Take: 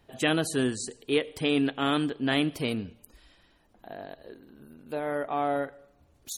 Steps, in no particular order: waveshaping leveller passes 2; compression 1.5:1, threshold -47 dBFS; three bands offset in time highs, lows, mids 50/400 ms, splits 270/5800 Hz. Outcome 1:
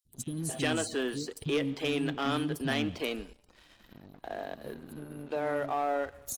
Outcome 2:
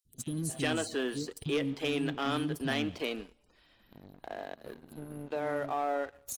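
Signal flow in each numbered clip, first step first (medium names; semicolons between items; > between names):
compression > three bands offset in time > waveshaping leveller; three bands offset in time > waveshaping leveller > compression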